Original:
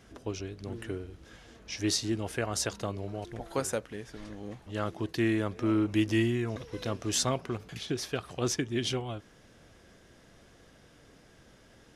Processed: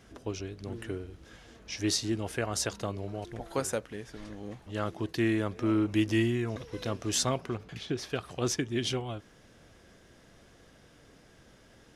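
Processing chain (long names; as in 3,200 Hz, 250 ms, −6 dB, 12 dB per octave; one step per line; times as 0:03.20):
0:07.54–0:08.10: high-shelf EQ 6,600 Hz −11 dB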